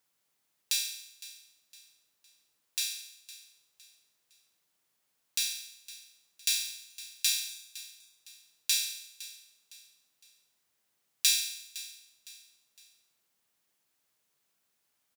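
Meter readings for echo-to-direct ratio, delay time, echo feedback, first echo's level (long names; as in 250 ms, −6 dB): −16.5 dB, 510 ms, 38%, −17.0 dB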